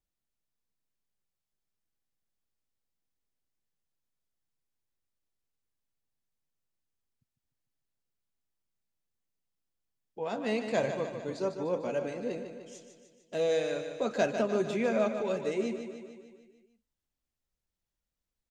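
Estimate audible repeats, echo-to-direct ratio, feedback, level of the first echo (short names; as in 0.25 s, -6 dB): 6, -6.5 dB, 59%, -8.5 dB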